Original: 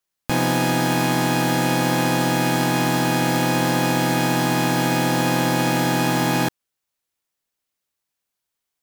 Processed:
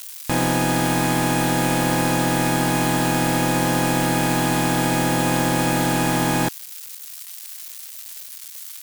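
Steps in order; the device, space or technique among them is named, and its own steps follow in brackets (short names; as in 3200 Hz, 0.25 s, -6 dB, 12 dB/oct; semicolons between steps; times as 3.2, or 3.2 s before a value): budget class-D amplifier (switching dead time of 0.11 ms; switching spikes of -16.5 dBFS)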